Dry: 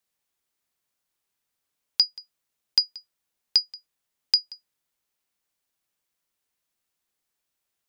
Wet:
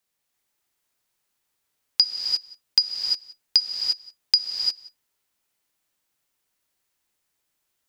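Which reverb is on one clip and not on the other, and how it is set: non-linear reverb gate 0.38 s rising, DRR 0 dB; gain +2 dB

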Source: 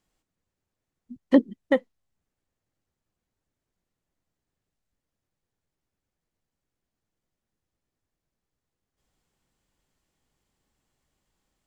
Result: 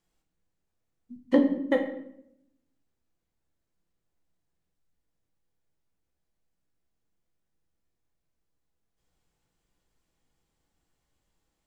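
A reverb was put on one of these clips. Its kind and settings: shoebox room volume 170 m³, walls mixed, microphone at 0.73 m; gain -3.5 dB

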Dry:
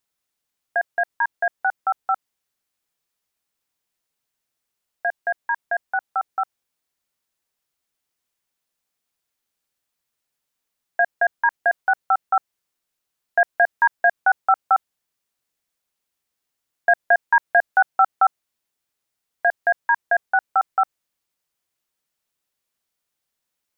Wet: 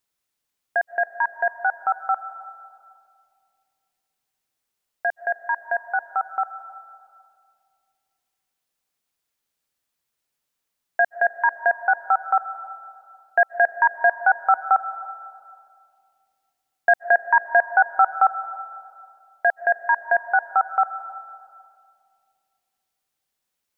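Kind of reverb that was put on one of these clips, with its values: digital reverb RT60 2.3 s, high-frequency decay 0.35×, pre-delay 0.115 s, DRR 13.5 dB

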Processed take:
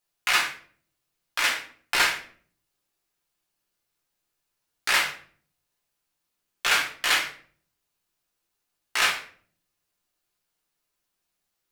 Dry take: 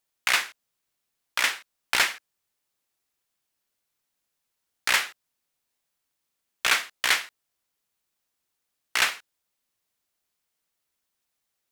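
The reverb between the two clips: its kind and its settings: shoebox room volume 49 m³, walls mixed, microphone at 0.87 m; gain -3.5 dB

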